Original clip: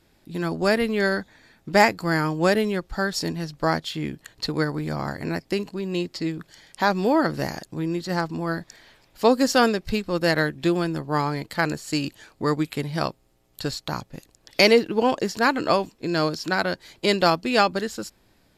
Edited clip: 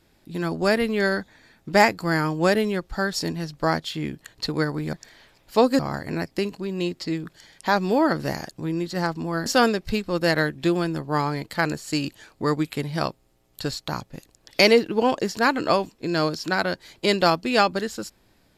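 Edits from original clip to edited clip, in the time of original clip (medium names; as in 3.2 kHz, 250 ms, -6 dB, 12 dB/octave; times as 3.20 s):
8.60–9.46 s: move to 4.93 s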